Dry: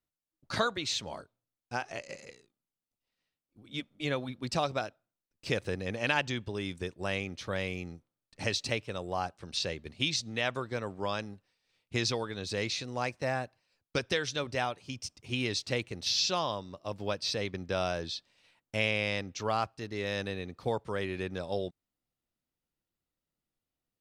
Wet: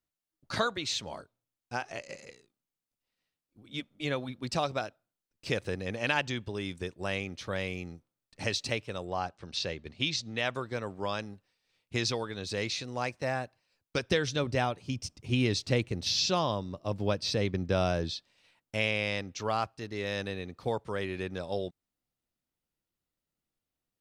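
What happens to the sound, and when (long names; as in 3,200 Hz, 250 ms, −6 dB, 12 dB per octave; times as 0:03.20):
0:09.05–0:10.38: low-pass filter 6,400 Hz
0:14.10–0:18.14: low-shelf EQ 420 Hz +9 dB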